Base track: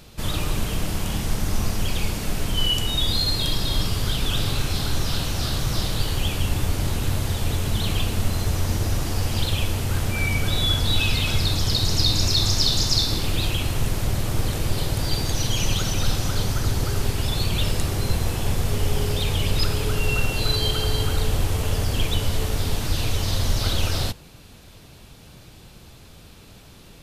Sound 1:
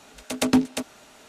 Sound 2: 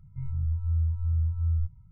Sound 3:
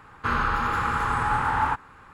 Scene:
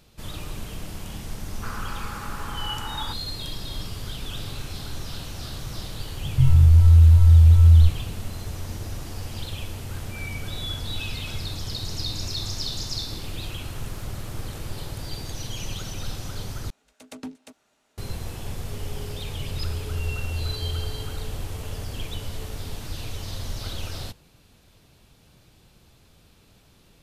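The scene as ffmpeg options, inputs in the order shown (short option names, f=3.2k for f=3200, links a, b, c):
-filter_complex "[3:a]asplit=2[a][b];[2:a]asplit=2[c][d];[0:a]volume=-10dB[e];[c]alimiter=level_in=26dB:limit=-1dB:release=50:level=0:latency=1[f];[b]aderivative[g];[e]asplit=2[h][i];[h]atrim=end=16.704[j];[1:a]atrim=end=1.28,asetpts=PTS-STARTPTS,volume=-18dB[k];[i]atrim=start=17.976[l];[a]atrim=end=2.13,asetpts=PTS-STARTPTS,volume=-12dB,afade=t=in:d=0.004:c=hsin,afade=t=out:st=2.126:d=0.004:c=hsin,adelay=1380[m];[f]atrim=end=1.91,asetpts=PTS-STARTPTS,volume=-6.5dB,afade=t=in:d=0.004:c=hsin,afade=t=out:st=1.906:d=0.004:c=hsin,adelay=6220[n];[g]atrim=end=2.13,asetpts=PTS-STARTPTS,volume=-13.5dB,afade=t=in:d=0.004:c=hsin,afade=t=out:st=2.126:d=0.004:c=hsin,adelay=13240[o];[d]atrim=end=1.91,asetpts=PTS-STARTPTS,volume=-4dB,afade=t=in:d=0.004:c=hsin,afade=t=out:st=1.906:d=0.004:c=hsin,adelay=19220[p];[j][k]acrossfade=d=0.004:c1=hsin:c2=hsin[q];[q][l]acrossfade=d=0.004:c1=hsin:c2=hsin[r];[r][m][n][o][p]amix=inputs=5:normalize=0"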